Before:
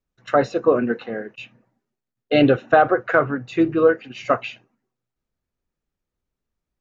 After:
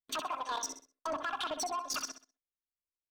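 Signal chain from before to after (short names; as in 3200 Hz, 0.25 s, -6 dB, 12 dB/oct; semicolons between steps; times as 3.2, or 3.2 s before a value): treble ducked by the level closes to 650 Hz, closed at -15.5 dBFS; comb 6.4 ms, depth 63%; in parallel at -3 dB: limiter -22.5 dBFS, peak gain reduction 20 dB; on the sum: gate with hold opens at -41 dBFS; compressor 6:1, threshold -28 dBFS, peak gain reduction 19.5 dB; dynamic EQ 170 Hz, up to -5 dB, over -44 dBFS, Q 0.71; level quantiser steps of 18 dB; feedback echo 0.14 s, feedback 35%, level -10 dB; wavefolder -28.5 dBFS; sample leveller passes 1; wide varispeed 2.19×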